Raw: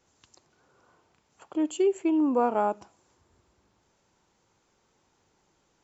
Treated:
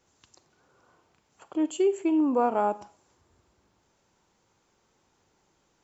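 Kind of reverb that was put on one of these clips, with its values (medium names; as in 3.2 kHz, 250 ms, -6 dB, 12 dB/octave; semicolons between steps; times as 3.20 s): Schroeder reverb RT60 0.4 s, combs from 32 ms, DRR 15 dB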